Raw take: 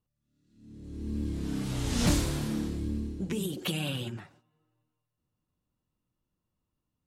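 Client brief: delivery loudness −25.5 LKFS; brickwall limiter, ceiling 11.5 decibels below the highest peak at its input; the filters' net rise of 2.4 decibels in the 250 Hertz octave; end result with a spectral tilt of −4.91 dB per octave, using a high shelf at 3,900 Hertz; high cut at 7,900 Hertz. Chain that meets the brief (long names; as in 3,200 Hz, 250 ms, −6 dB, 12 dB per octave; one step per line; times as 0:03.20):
low-pass filter 7,900 Hz
parametric band 250 Hz +3 dB
high-shelf EQ 3,900 Hz +7.5 dB
level +7.5 dB
brickwall limiter −15 dBFS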